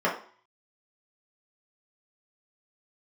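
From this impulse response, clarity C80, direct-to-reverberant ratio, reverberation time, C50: 12.5 dB, -6.0 dB, 0.45 s, 8.0 dB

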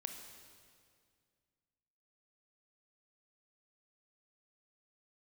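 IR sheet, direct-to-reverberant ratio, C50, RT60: 4.5 dB, 6.0 dB, 2.1 s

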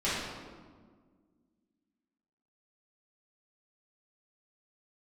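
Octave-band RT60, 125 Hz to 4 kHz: 2.0, 2.6, 1.8, 1.5, 1.1, 0.95 s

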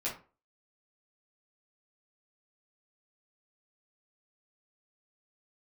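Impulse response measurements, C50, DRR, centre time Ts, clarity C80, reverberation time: 8.0 dB, -7.0 dB, 24 ms, 14.5 dB, 0.35 s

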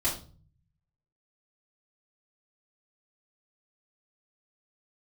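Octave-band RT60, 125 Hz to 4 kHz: 1.2, 0.70, 0.45, 0.35, 0.30, 0.35 s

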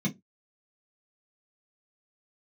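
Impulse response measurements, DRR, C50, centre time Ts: -3.5 dB, 19.5 dB, 10 ms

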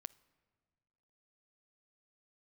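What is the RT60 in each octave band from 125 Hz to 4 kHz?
1.9, 1.8, 1.8, 1.6, 1.4, 1.1 s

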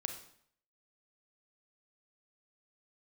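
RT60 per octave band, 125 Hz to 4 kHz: 0.70, 0.60, 0.65, 0.65, 0.60, 0.55 s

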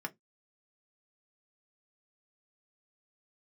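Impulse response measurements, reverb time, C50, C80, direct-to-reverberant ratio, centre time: 0.15 s, 26.5 dB, 38.5 dB, 1.5 dB, 4 ms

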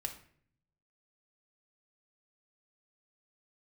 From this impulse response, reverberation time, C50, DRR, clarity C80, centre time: 0.55 s, 10.5 dB, 3.5 dB, 14.5 dB, 13 ms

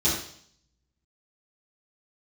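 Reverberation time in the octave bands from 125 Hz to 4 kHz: 0.95, 0.65, 0.60, 0.60, 0.60, 0.70 s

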